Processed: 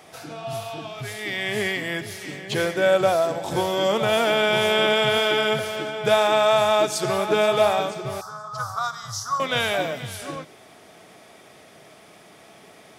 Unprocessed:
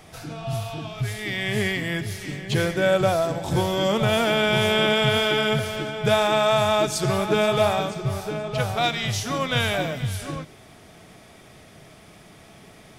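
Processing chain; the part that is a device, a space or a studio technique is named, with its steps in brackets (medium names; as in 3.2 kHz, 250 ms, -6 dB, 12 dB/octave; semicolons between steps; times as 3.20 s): 8.21–9.40 s: FFT filter 120 Hz 0 dB, 310 Hz -29 dB, 810 Hz -9 dB, 1.2 kHz +9 dB, 2.5 kHz -30 dB, 5.1 kHz +2 dB, 9.3 kHz -4 dB; filter by subtraction (in parallel: low-pass 520 Hz 12 dB/octave + polarity flip)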